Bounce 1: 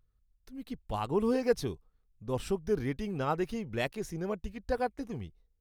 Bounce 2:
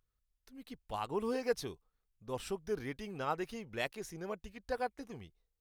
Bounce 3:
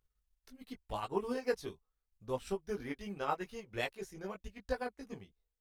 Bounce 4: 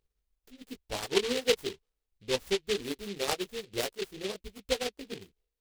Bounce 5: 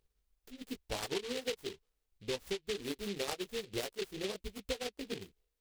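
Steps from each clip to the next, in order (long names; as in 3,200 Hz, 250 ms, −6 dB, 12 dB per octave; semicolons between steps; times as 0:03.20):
low-shelf EQ 380 Hz −10 dB; level −2 dB
multi-voice chorus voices 6, 0.75 Hz, delay 18 ms, depth 2.8 ms; transient designer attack +4 dB, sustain −6 dB; level +1.5 dB
parametric band 420 Hz +9 dB 1.1 octaves; short delay modulated by noise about 3,000 Hz, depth 0.18 ms
downward compressor 10 to 1, threshold −36 dBFS, peak gain reduction 16.5 dB; level +2 dB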